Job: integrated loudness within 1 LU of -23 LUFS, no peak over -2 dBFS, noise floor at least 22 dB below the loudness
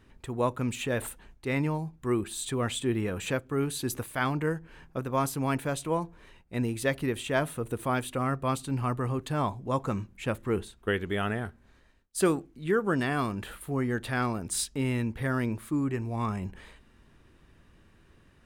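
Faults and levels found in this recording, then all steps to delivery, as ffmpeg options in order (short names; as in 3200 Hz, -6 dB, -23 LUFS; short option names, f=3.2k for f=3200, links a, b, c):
loudness -30.5 LUFS; peak -13.0 dBFS; loudness target -23.0 LUFS
-> -af "volume=7.5dB"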